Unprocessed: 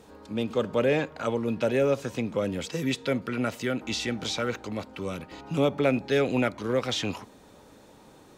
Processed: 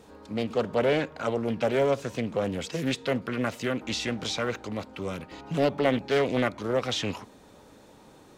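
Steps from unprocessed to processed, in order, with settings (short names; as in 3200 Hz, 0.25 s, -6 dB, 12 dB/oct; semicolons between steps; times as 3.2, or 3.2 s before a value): Doppler distortion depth 0.44 ms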